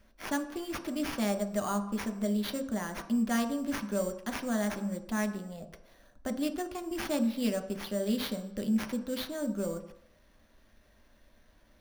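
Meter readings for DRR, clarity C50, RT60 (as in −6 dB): 5.0 dB, 11.5 dB, non-exponential decay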